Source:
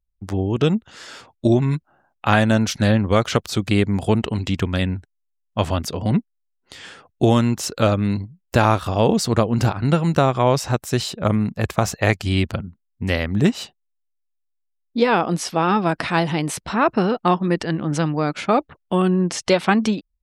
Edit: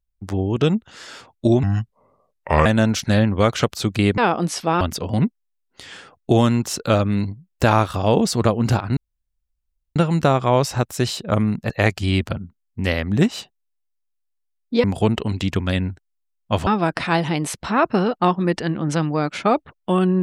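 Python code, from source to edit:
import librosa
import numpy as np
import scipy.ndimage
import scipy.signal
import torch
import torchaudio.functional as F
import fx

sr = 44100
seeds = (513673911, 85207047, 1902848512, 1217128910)

y = fx.edit(x, sr, fx.speed_span(start_s=1.63, length_s=0.75, speed=0.73),
    fx.swap(start_s=3.9, length_s=1.83, other_s=15.07, other_length_s=0.63),
    fx.insert_room_tone(at_s=9.89, length_s=0.99),
    fx.cut(start_s=11.63, length_s=0.3), tone=tone)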